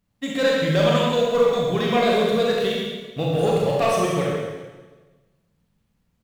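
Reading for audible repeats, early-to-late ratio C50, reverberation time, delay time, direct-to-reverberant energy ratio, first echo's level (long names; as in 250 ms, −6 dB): 1, −1.0 dB, 1.3 s, 133 ms, −4.0 dB, −7.5 dB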